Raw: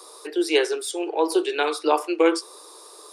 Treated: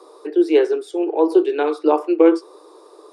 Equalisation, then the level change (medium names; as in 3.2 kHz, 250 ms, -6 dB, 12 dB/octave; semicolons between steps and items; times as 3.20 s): tilt EQ -5 dB/octave; 0.0 dB